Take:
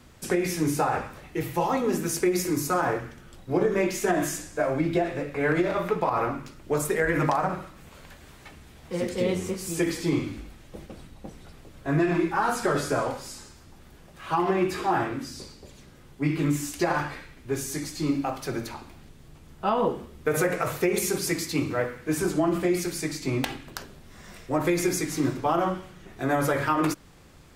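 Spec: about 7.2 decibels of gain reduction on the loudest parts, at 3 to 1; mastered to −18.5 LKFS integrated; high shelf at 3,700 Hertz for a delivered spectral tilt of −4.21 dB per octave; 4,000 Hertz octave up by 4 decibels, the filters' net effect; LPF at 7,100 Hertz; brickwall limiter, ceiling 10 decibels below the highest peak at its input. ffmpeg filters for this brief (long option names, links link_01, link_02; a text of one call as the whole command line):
ffmpeg -i in.wav -af "lowpass=7100,highshelf=frequency=3700:gain=4,equalizer=frequency=4000:width_type=o:gain=3,acompressor=threshold=-29dB:ratio=3,volume=15dB,alimiter=limit=-7.5dB:level=0:latency=1" out.wav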